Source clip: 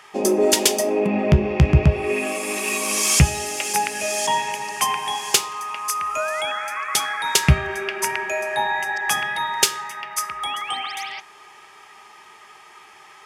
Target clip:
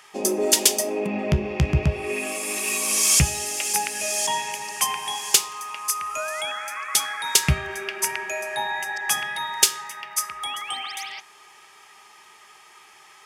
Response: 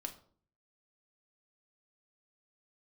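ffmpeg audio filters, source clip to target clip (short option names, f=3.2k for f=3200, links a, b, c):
-af "highshelf=f=3.4k:g=9,volume=-6dB"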